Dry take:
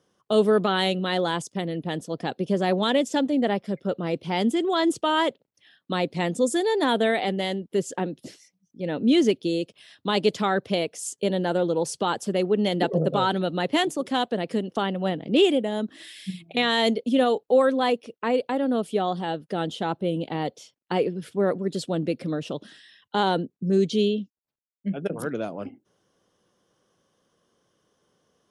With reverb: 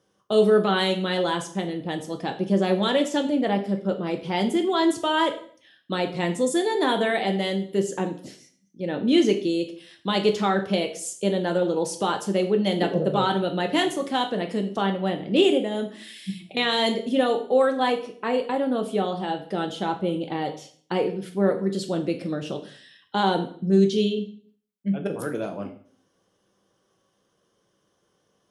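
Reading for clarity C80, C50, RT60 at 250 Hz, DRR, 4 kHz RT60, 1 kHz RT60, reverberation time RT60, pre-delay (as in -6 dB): 15.0 dB, 11.5 dB, 0.60 s, 4.0 dB, 0.45 s, 0.50 s, 0.50 s, 4 ms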